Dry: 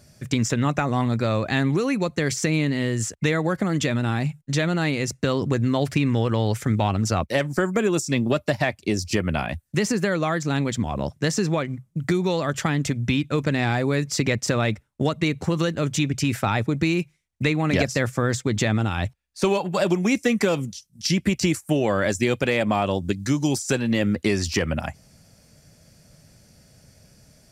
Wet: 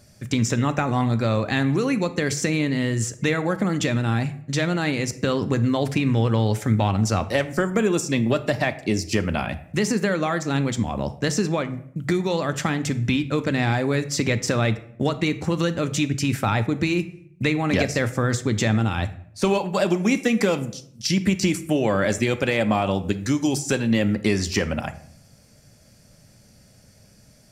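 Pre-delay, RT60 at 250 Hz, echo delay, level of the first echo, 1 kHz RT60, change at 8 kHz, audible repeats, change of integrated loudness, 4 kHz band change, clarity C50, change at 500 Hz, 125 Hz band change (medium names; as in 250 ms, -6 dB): 4 ms, 0.90 s, no echo, no echo, 0.60 s, 0.0 dB, no echo, +0.5 dB, +0.5 dB, 15.0 dB, +0.5 dB, +0.5 dB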